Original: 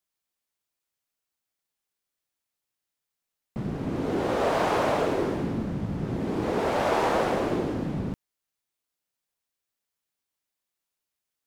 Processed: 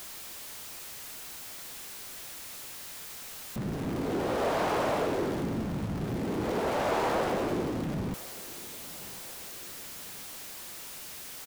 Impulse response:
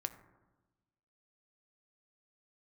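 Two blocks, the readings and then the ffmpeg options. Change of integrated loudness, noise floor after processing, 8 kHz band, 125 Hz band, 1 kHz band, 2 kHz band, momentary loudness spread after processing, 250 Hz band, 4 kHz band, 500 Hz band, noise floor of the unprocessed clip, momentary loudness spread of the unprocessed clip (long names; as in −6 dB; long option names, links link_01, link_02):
−6.5 dB, −43 dBFS, +8.0 dB, −3.0 dB, −3.5 dB, −3.0 dB, 12 LU, −3.0 dB, +0.5 dB, −3.5 dB, below −85 dBFS, 9 LU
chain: -af "aeval=exprs='val(0)+0.5*0.0299*sgn(val(0))':channel_layout=same,aecho=1:1:1048|2096|3144|4192:0.0841|0.0429|0.0219|0.0112,volume=-5.5dB"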